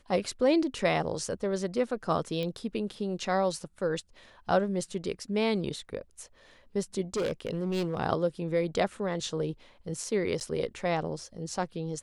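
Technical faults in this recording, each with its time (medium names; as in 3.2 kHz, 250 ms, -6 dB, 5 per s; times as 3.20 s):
2.43 s: pop -22 dBFS
7.14–8.00 s: clipped -26 dBFS
10.40–10.41 s: dropout 9 ms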